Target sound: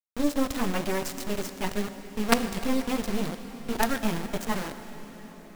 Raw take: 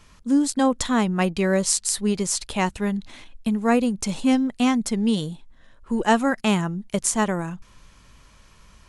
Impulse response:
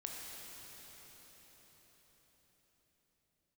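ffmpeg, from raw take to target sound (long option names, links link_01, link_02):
-filter_complex "[0:a]adynamicsmooth=sensitivity=0.5:basefreq=3600,flanger=delay=18:depth=4.3:speed=0.63,atempo=1.6,acrusher=bits=3:dc=4:mix=0:aa=0.000001,asplit=2[link_01][link_02];[1:a]atrim=start_sample=2205[link_03];[link_02][link_03]afir=irnorm=-1:irlink=0,volume=-4dB[link_04];[link_01][link_04]amix=inputs=2:normalize=0,volume=-1dB"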